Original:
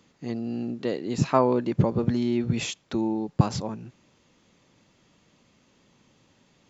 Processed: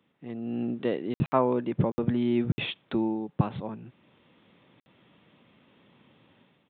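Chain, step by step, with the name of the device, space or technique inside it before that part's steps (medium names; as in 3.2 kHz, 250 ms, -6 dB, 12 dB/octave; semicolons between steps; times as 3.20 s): call with lost packets (high-pass 100 Hz 12 dB/octave; resampled via 8 kHz; level rider gain up to 11 dB; lost packets of 60 ms); trim -8.5 dB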